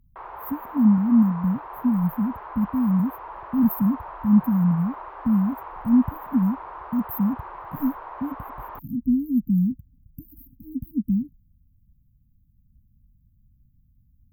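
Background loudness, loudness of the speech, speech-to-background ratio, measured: -38.5 LUFS, -23.5 LUFS, 15.0 dB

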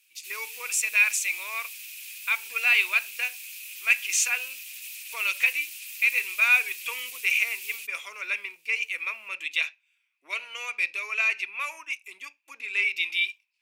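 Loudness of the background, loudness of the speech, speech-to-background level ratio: -37.5 LUFS, -25.5 LUFS, 12.0 dB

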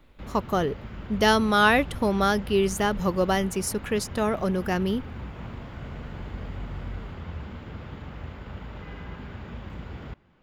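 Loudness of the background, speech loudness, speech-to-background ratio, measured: -39.0 LUFS, -24.5 LUFS, 14.5 dB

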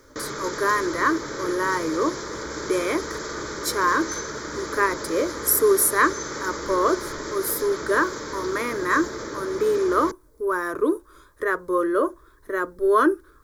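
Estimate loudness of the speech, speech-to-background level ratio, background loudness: -24.0 LUFS, 8.0 dB, -32.0 LUFS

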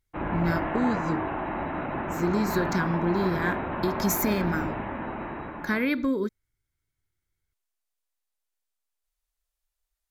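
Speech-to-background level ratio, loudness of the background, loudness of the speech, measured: 3.5 dB, -31.5 LUFS, -28.0 LUFS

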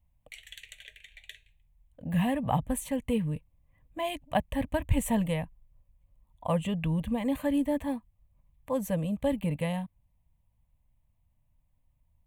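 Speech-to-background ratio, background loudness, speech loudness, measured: 17.5 dB, -48.5 LUFS, -31.0 LUFS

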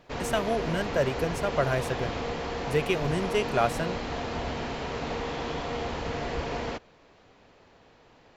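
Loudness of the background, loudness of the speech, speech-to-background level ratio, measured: -33.0 LUFS, -29.5 LUFS, 3.5 dB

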